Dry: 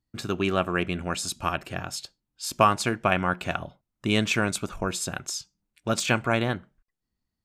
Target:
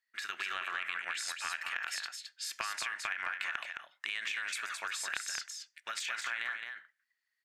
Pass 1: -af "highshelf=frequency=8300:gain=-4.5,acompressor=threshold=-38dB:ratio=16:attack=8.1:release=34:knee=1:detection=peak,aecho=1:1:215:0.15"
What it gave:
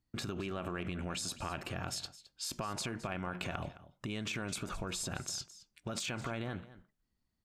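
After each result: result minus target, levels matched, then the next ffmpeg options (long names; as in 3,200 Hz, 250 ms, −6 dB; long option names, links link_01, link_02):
echo-to-direct −11.5 dB; 2,000 Hz band −7.0 dB
-af "highshelf=frequency=8300:gain=-4.5,acompressor=threshold=-38dB:ratio=16:attack=8.1:release=34:knee=1:detection=peak,aecho=1:1:215:0.562"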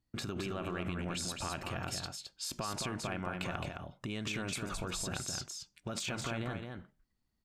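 2,000 Hz band −7.0 dB
-af "highpass=frequency=1800:width_type=q:width=5.6,highshelf=frequency=8300:gain=-4.5,acompressor=threshold=-38dB:ratio=16:attack=8.1:release=34:knee=1:detection=peak,aecho=1:1:215:0.562"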